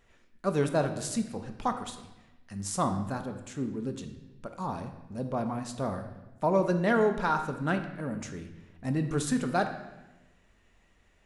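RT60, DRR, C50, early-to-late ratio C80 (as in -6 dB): 1.1 s, 6.0 dB, 9.0 dB, 11.0 dB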